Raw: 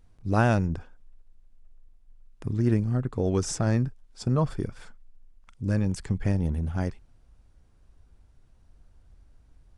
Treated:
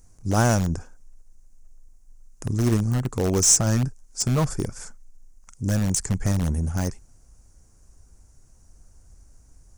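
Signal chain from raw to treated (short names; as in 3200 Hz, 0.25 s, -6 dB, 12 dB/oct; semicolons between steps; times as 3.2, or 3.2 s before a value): resonant high shelf 4800 Hz +11 dB, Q 3; in parallel at -10.5 dB: wrapped overs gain 18.5 dB; on the sum: gain +1.5 dB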